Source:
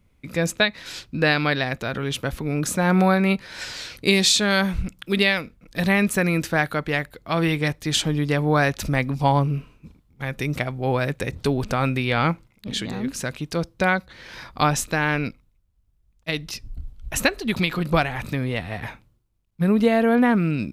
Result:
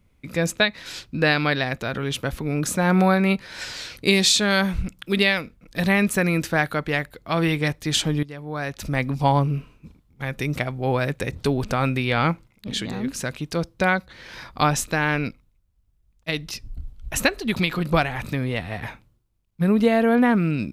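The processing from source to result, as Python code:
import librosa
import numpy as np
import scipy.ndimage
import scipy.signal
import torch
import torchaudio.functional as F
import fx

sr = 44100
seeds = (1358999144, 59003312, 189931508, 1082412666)

y = fx.edit(x, sr, fx.fade_in_from(start_s=8.23, length_s=0.83, curve='qua', floor_db=-16.0), tone=tone)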